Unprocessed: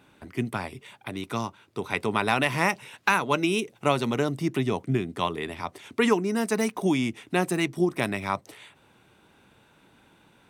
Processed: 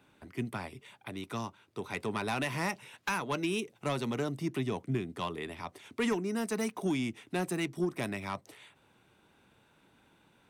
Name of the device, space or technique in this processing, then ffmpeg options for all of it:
one-band saturation: -filter_complex "[0:a]acrossover=split=250|3900[link_01][link_02][link_03];[link_02]asoftclip=type=tanh:threshold=-20dB[link_04];[link_01][link_04][link_03]amix=inputs=3:normalize=0,volume=-6.5dB"

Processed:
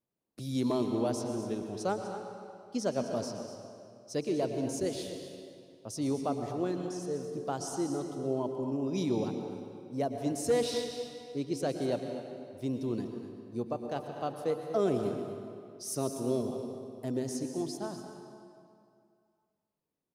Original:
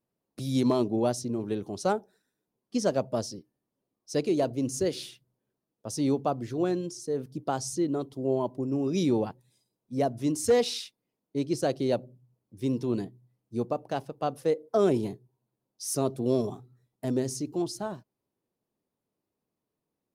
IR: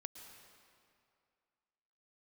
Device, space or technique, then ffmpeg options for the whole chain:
cave: -filter_complex "[0:a]aecho=1:1:246:0.237[link_01];[1:a]atrim=start_sample=2205[link_02];[link_01][link_02]afir=irnorm=-1:irlink=0"

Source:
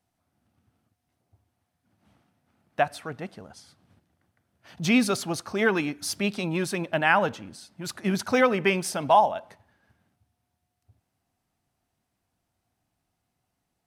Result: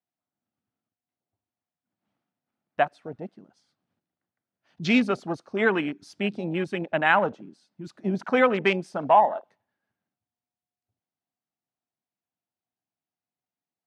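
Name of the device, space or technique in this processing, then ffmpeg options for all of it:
over-cleaned archive recording: -af "highpass=170,lowpass=6200,afwtdn=0.0224,volume=1dB"

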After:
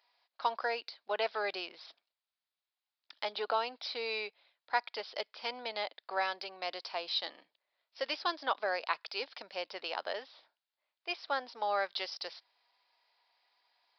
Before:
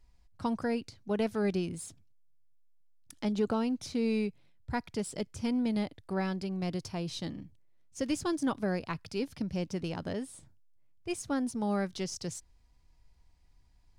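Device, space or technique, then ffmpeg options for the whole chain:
musical greeting card: -af "aresample=11025,aresample=44100,highpass=frequency=610:width=0.5412,highpass=frequency=610:width=1.3066,equalizer=frequency=3800:width_type=o:width=0.39:gain=4,volume=5.5dB"

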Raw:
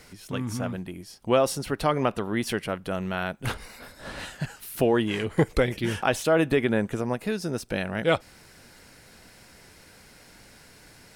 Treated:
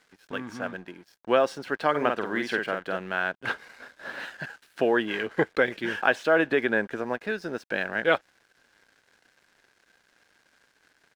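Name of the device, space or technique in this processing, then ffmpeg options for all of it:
pocket radio on a weak battery: -filter_complex "[0:a]asplit=3[link_01][link_02][link_03];[link_01]afade=type=out:start_time=1.94:duration=0.02[link_04];[link_02]asplit=2[link_05][link_06];[link_06]adelay=48,volume=-4.5dB[link_07];[link_05][link_07]amix=inputs=2:normalize=0,afade=type=in:start_time=1.94:duration=0.02,afade=type=out:start_time=2.96:duration=0.02[link_08];[link_03]afade=type=in:start_time=2.96:duration=0.02[link_09];[link_04][link_08][link_09]amix=inputs=3:normalize=0,highpass=290,lowpass=3900,aeval=exprs='sgn(val(0))*max(abs(val(0))-0.00237,0)':channel_layout=same,equalizer=frequency=1600:width_type=o:width=0.23:gain=11"

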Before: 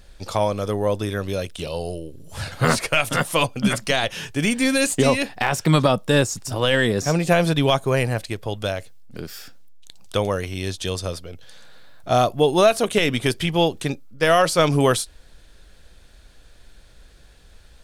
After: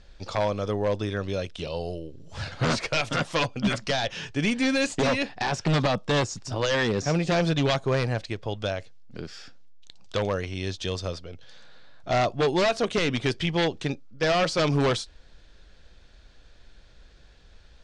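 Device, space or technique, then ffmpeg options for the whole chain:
synthesiser wavefolder: -af "aeval=exprs='0.224*(abs(mod(val(0)/0.224+3,4)-2)-1)':channel_layout=same,lowpass=frequency=6300:width=0.5412,lowpass=frequency=6300:width=1.3066,volume=-3.5dB"

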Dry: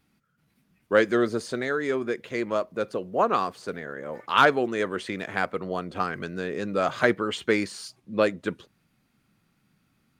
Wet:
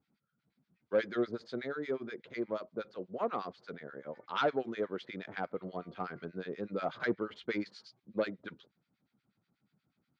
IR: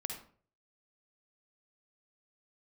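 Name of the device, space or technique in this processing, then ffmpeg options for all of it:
guitar amplifier with harmonic tremolo: -filter_complex "[0:a]asettb=1/sr,asplit=3[link_01][link_02][link_03];[link_01]atrim=end=5.524[link_04];[link_02]atrim=start=5.52:end=6.26,asetpts=PTS-STARTPTS,afade=type=in:duration=0.004:curve=qsin,afade=type=out:start_time=0.736:duration=0.004:curve=qsin,bandreject=frequency=234.8:width_type=h:width=4,bandreject=frequency=469.6:width_type=h:width=4,bandreject=frequency=704.4:width_type=h:width=4,bandreject=frequency=939.2:width_type=h:width=4,bandreject=frequency=1174:width_type=h:width=4,bandreject=frequency=1408.8:width_type=h:width=4,bandreject=frequency=1643.6:width_type=h:width=4,bandreject=frequency=1878.4:width_type=h:width=4,bandreject=frequency=2113.2:width_type=h:width=4,bandreject=frequency=2348:width_type=h:width=4,bandreject=frequency=2582.8:width_type=h:width=4,bandreject=frequency=2817.6:width_type=h:width=4,bandreject=frequency=3052.4:width_type=h:width=4,bandreject=frequency=3287.2:width_type=h:width=4,bandreject=frequency=3522:width_type=h:width=4,bandreject=frequency=3756.8:width_type=h:width=4,bandreject=frequency=3991.6:width_type=h:width=4,bandreject=frequency=4226.4:width_type=h:width=4,bandreject=frequency=4461.2:width_type=h:width=4,bandreject=frequency=4696:width_type=h:width=4,bandreject=frequency=4930.8:width_type=h:width=4,bandreject=frequency=5165.6:width_type=h:width=4,bandreject=frequency=5400.4:width_type=h:width=4,bandreject=frequency=5635.2:width_type=h:width=4,bandreject=frequency=5870:width_type=h:width=4,bandreject=frequency=6104.8:width_type=h:width=4,bandreject=frequency=6339.6:width_type=h:width=4,bandreject=frequency=6574.4:width_type=h:width=4,bandreject=frequency=6809.2:width_type=h:width=4,bandreject=frequency=7044:width_type=h:width=4,bandreject=frequency=7278.8:width_type=h:width=4,bandreject=frequency=7513.6:width_type=h:width=4[link_05];[link_03]atrim=start=6.256[link_06];[link_04][link_05]acrossfade=duration=0.004:curve1=hsin:curve2=qsin[link_07];[link_07][link_06]acrossfade=duration=0.004:curve1=qsin:curve2=hsin,acrossover=split=1200[link_08][link_09];[link_08]aeval=exprs='val(0)*(1-1/2+1/2*cos(2*PI*8.3*n/s))':channel_layout=same[link_10];[link_09]aeval=exprs='val(0)*(1-1/2-1/2*cos(2*PI*8.3*n/s))':channel_layout=same[link_11];[link_10][link_11]amix=inputs=2:normalize=0,asoftclip=type=tanh:threshold=-15.5dB,highpass=87,equalizer=frequency=94:width_type=q:width=4:gain=-4,equalizer=frequency=1100:width_type=q:width=4:gain=-4,equalizer=frequency=1800:width_type=q:width=4:gain=-4,equalizer=frequency=2700:width_type=q:width=4:gain=-7,lowpass=frequency=4500:width=0.5412,lowpass=frequency=4500:width=1.3066,volume=-4.5dB"

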